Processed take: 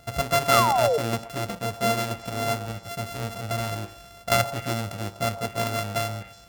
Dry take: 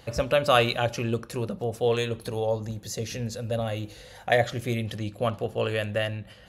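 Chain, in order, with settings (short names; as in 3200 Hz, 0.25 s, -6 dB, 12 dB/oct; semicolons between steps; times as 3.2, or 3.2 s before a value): sample sorter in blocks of 64 samples; painted sound fall, 0.51–0.98, 430–1400 Hz -22 dBFS; delay with a stepping band-pass 0.123 s, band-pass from 790 Hz, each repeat 1.4 oct, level -10.5 dB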